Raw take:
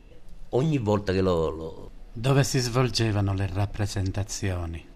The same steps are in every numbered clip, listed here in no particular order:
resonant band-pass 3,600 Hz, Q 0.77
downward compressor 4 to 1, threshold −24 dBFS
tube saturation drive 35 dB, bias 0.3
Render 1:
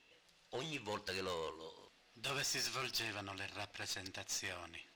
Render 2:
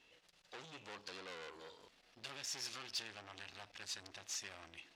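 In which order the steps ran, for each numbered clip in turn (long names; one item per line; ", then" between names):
resonant band-pass, then downward compressor, then tube saturation
downward compressor, then tube saturation, then resonant band-pass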